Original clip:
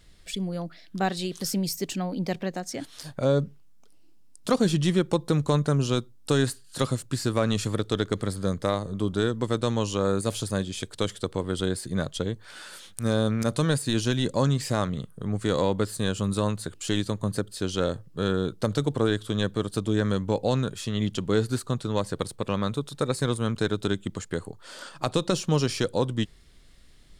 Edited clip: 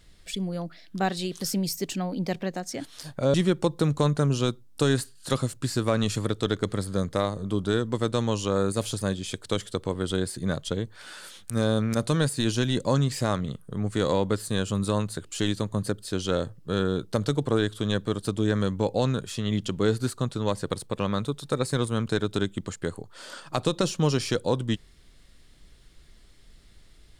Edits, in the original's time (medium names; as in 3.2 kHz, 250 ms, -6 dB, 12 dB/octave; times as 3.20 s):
3.34–4.83 s: delete